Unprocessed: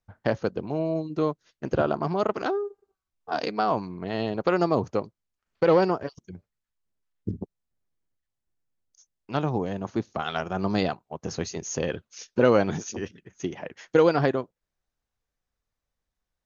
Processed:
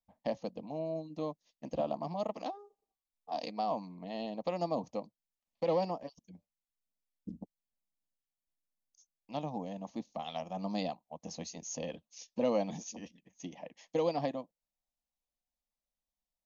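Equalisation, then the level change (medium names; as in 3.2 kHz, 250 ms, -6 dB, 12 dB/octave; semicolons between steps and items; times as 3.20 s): bass shelf 200 Hz -4 dB; static phaser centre 390 Hz, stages 6; -7.0 dB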